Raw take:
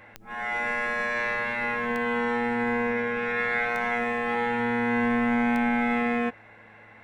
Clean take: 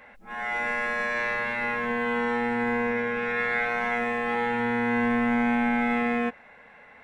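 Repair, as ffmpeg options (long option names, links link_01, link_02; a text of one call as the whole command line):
ffmpeg -i in.wav -af "adeclick=threshold=4,bandreject=frequency=109.1:width_type=h:width=4,bandreject=frequency=218.2:width_type=h:width=4,bandreject=frequency=327.3:width_type=h:width=4,bandreject=frequency=436.4:width_type=h:width=4" out.wav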